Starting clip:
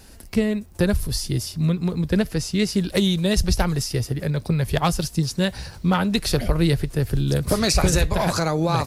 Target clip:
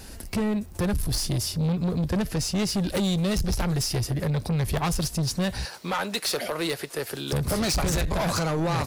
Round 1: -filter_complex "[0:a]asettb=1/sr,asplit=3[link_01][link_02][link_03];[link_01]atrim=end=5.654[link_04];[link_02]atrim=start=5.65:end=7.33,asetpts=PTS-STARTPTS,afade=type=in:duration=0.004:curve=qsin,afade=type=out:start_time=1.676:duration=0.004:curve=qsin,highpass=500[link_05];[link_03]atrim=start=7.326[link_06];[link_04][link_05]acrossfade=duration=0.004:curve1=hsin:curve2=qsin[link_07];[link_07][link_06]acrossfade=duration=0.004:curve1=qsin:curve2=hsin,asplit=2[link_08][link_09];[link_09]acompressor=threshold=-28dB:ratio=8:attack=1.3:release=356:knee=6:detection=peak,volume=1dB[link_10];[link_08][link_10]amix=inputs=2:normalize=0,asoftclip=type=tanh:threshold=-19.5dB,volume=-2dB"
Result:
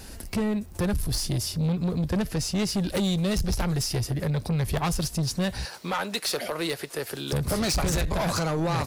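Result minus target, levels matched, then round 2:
downward compressor: peak gain reduction +6 dB
-filter_complex "[0:a]asettb=1/sr,asplit=3[link_01][link_02][link_03];[link_01]atrim=end=5.654[link_04];[link_02]atrim=start=5.65:end=7.33,asetpts=PTS-STARTPTS,afade=type=in:duration=0.004:curve=qsin,afade=type=out:start_time=1.676:duration=0.004:curve=qsin,highpass=500[link_05];[link_03]atrim=start=7.326[link_06];[link_04][link_05]acrossfade=duration=0.004:curve1=hsin:curve2=qsin[link_07];[link_07][link_06]acrossfade=duration=0.004:curve1=qsin:curve2=hsin,asplit=2[link_08][link_09];[link_09]acompressor=threshold=-21dB:ratio=8:attack=1.3:release=356:knee=6:detection=peak,volume=1dB[link_10];[link_08][link_10]amix=inputs=2:normalize=0,asoftclip=type=tanh:threshold=-19.5dB,volume=-2dB"

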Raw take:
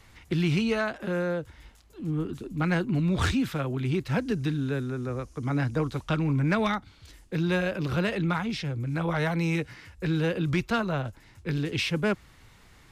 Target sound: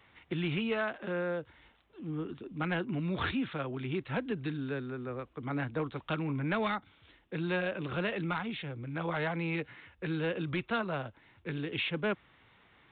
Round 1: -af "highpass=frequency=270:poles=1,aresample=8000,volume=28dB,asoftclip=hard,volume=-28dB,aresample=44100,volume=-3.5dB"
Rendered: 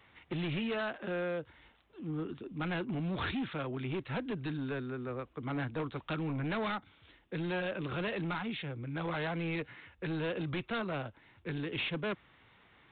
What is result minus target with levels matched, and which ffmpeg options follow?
gain into a clipping stage and back: distortion +11 dB
-af "highpass=frequency=270:poles=1,aresample=8000,volume=21.5dB,asoftclip=hard,volume=-21.5dB,aresample=44100,volume=-3.5dB"

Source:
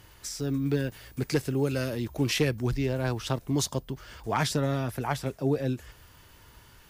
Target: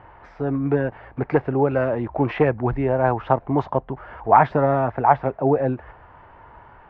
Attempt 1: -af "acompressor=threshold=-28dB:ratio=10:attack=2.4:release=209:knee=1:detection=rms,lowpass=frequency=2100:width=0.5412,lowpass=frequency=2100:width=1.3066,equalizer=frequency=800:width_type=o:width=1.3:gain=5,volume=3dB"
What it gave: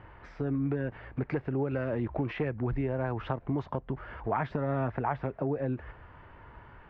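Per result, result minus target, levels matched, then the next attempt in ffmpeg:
downward compressor: peak gain reduction +11 dB; 1,000 Hz band −5.0 dB
-af "lowpass=frequency=2100:width=0.5412,lowpass=frequency=2100:width=1.3066,equalizer=frequency=800:width_type=o:width=1.3:gain=5,volume=3dB"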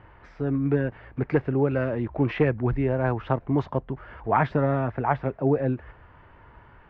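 1,000 Hz band −4.5 dB
-af "lowpass=frequency=2100:width=0.5412,lowpass=frequency=2100:width=1.3066,equalizer=frequency=800:width_type=o:width=1.3:gain=15.5,volume=3dB"

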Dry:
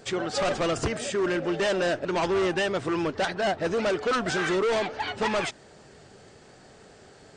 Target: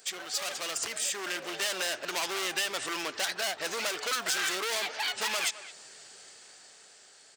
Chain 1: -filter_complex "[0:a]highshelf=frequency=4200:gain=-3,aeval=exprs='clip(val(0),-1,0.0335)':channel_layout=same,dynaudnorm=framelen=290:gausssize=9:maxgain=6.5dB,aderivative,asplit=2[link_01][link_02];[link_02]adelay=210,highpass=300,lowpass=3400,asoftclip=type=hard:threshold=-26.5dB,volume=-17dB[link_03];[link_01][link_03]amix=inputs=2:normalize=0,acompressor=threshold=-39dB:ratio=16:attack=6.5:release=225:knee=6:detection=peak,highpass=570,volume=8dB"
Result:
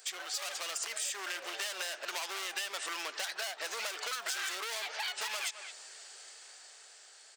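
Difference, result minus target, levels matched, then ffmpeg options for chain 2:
downward compressor: peak gain reduction +7.5 dB; 500 Hz band −3.0 dB
-filter_complex "[0:a]highshelf=frequency=4200:gain=-3,aeval=exprs='clip(val(0),-1,0.0335)':channel_layout=same,dynaudnorm=framelen=290:gausssize=9:maxgain=6.5dB,aderivative,asplit=2[link_01][link_02];[link_02]adelay=210,highpass=300,lowpass=3400,asoftclip=type=hard:threshold=-26.5dB,volume=-17dB[link_03];[link_01][link_03]amix=inputs=2:normalize=0,acompressor=threshold=-31dB:ratio=16:attack=6.5:release=225:knee=6:detection=peak,volume=8dB"

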